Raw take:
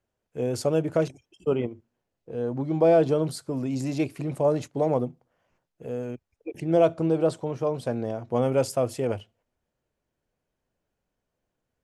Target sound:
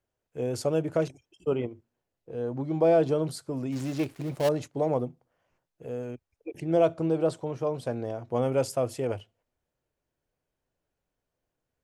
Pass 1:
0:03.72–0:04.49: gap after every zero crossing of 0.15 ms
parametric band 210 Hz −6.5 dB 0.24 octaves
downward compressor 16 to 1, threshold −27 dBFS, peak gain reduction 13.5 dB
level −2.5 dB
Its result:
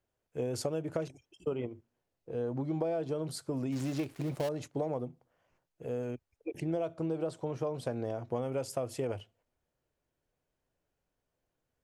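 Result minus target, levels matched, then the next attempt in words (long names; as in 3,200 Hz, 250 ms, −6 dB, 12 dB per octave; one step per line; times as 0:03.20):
downward compressor: peak gain reduction +13.5 dB
0:03.72–0:04.49: gap after every zero crossing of 0.15 ms
parametric band 210 Hz −6.5 dB 0.24 octaves
level −2.5 dB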